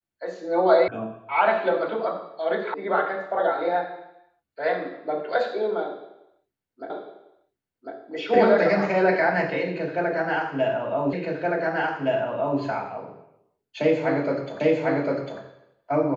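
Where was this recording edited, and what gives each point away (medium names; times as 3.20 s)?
0.88 s: sound stops dead
2.74 s: sound stops dead
6.90 s: repeat of the last 1.05 s
11.13 s: repeat of the last 1.47 s
14.60 s: repeat of the last 0.8 s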